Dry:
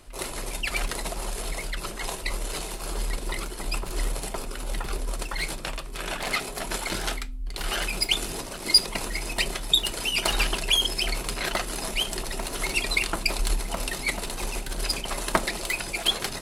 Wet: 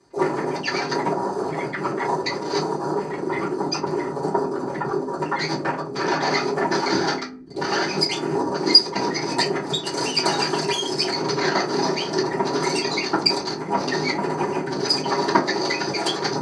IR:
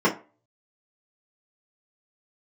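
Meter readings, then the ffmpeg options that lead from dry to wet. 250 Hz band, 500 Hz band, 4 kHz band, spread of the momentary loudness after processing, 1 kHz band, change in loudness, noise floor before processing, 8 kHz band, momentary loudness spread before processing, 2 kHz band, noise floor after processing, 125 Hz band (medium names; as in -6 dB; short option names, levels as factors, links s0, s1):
+13.0 dB, +12.5 dB, +2.5 dB, 6 LU, +11.0 dB, +5.0 dB, -36 dBFS, -2.0 dB, 11 LU, +2.5 dB, -31 dBFS, +4.5 dB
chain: -filter_complex "[0:a]afwtdn=0.0126,acompressor=threshold=0.0316:ratio=2.5,aexciter=amount=8.5:drive=3.2:freq=4200,highpass=f=100:w=0.5412,highpass=f=100:w=1.3066,equalizer=f=110:t=q:w=4:g=-5,equalizer=f=180:t=q:w=4:g=-9,equalizer=f=280:t=q:w=4:g=-3,equalizer=f=610:t=q:w=4:g=-4,equalizer=f=2600:t=q:w=4:g=-4,equalizer=f=5000:t=q:w=4:g=-8,lowpass=f=6600:w=0.5412,lowpass=f=6600:w=1.3066[s0];[1:a]atrim=start_sample=2205,asetrate=38367,aresample=44100[s1];[s0][s1]afir=irnorm=-1:irlink=0,volume=0.562"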